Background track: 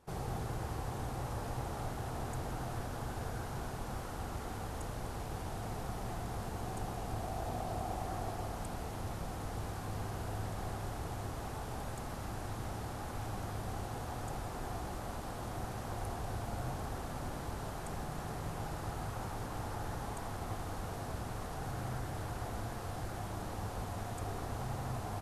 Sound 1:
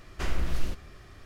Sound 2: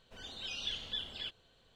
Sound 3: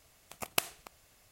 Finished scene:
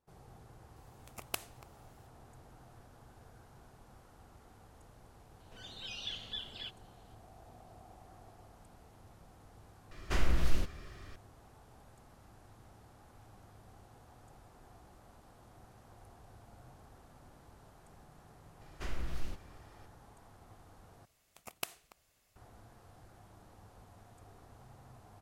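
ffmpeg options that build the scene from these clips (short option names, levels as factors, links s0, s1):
-filter_complex "[3:a]asplit=2[s0][s1];[1:a]asplit=2[s2][s3];[0:a]volume=0.133,asplit=3[s4][s5][s6];[s4]atrim=end=9.914[s7];[s2]atrim=end=1.25,asetpts=PTS-STARTPTS,volume=0.944[s8];[s5]atrim=start=11.156:end=21.054[s9];[s1]atrim=end=1.31,asetpts=PTS-STARTPTS,volume=0.335[s10];[s6]atrim=start=22.356[s11];[s0]atrim=end=1.31,asetpts=PTS-STARTPTS,volume=0.398,afade=t=in:d=0.004:c=hsin,afade=t=out:st=1.306:d=0.004:c=hsin,adelay=760[s12];[2:a]atrim=end=1.75,asetpts=PTS-STARTPTS,volume=0.708,afade=t=in:d=0.004:c=hsin,afade=t=out:st=1.746:d=0.004:c=hsin,adelay=5400[s13];[s3]atrim=end=1.25,asetpts=PTS-STARTPTS,volume=0.335,afade=t=in:d=0.004:c=hsin,afade=t=out:st=1.246:d=0.004:c=hsin,adelay=18610[s14];[s7][s8]acrossfade=d=0.004:c1=hsin:c2=hsin[s15];[s15][s9]acrossfade=d=0.004:c1=hsin:c2=hsin[s16];[s16][s10]acrossfade=d=0.004:c1=hsin:c2=hsin[s17];[s17][s11]acrossfade=d=0.004:c1=hsin:c2=hsin[s18];[s18][s12][s13][s14]amix=inputs=4:normalize=0"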